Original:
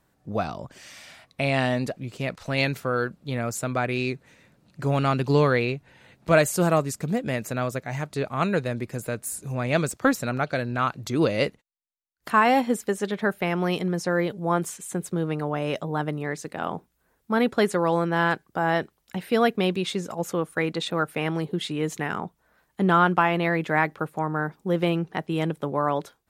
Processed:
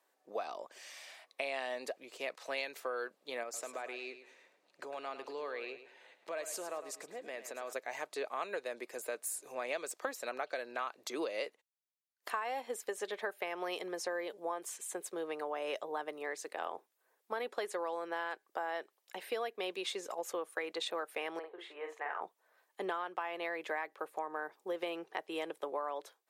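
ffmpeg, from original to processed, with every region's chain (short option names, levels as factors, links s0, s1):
-filter_complex "[0:a]asettb=1/sr,asplit=3[s0][s1][s2];[s0]atrim=end=3.434[s3];[s1]atrim=start=3.43:end=7.73,asetpts=PTS-STARTPTS,afade=t=in:d=0.004:c=qsin,afade=t=out:st=4.296:d=0.004:c=qsin,highshelf=f=10000:g=-10.5,acompressor=threshold=0.0316:ratio=5:attack=3.2:release=140:knee=1:detection=peak,aecho=1:1:106|212|318:0.266|0.0798|0.0239,atrim=end_sample=189630[s4];[s2]atrim=start=7.726[s5];[s3][s4]acrossfade=d=0.004:c1=hsin:c2=qsin[s6];[s6][s5]acrossfade=d=0.004:c1=qsin:c2=hsin,asettb=1/sr,asplit=3[s7][s8][s9];[s7]atrim=end=21.394[s10];[s8]atrim=start=21.39:end=22.21,asetpts=PTS-STARTPTS,afade=t=in:d=0.004:c=qsin,afade=t=out:st=0.816:d=0.004:c=qsin,acrossover=split=470 2100:gain=0.0708 1 0.0631[s11][s12][s13];[s11][s12][s13]amix=inputs=3:normalize=0,bandreject=f=50:t=h:w=6,bandreject=f=100:t=h:w=6,bandreject=f=150:t=h:w=6,bandreject=f=200:t=h:w=6,bandreject=f=250:t=h:w=6,bandreject=f=300:t=h:w=6,bandreject=f=350:t=h:w=6,bandreject=f=400:t=h:w=6,bandreject=f=450:t=h:w=6,asplit=2[s14][s15];[s15]adelay=44,volume=0.562[s16];[s14][s16]amix=inputs=2:normalize=0,atrim=end_sample=36162[s17];[s9]atrim=start=22.206[s18];[s10][s17]acrossfade=d=0.004:c1=hsin:c2=qsin[s19];[s19][s18]acrossfade=d=0.004:c1=qsin:c2=hsin,highpass=f=410:w=0.5412,highpass=f=410:w=1.3066,bandreject=f=1400:w=11,acompressor=threshold=0.0398:ratio=12,volume=0.531"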